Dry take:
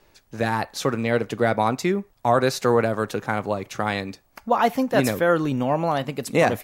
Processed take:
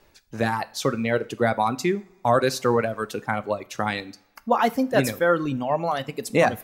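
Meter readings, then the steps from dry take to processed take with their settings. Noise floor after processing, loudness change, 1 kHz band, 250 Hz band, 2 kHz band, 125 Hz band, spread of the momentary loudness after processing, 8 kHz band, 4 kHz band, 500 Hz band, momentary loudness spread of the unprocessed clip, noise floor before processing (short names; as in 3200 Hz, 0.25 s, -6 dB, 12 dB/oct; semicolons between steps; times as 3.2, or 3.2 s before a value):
-60 dBFS, -1.0 dB, -1.0 dB, -2.0 dB, -0.5 dB, -2.5 dB, 8 LU, -0.5 dB, -0.5 dB, -1.0 dB, 6 LU, -61 dBFS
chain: reverb removal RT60 1.9 s; two-slope reverb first 0.4 s, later 1.7 s, from -20 dB, DRR 14 dB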